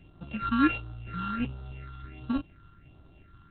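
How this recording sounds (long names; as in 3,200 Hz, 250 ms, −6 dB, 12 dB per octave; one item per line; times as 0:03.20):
a buzz of ramps at a fixed pitch in blocks of 32 samples
phaser sweep stages 6, 1.4 Hz, lowest notch 600–2,200 Hz
G.726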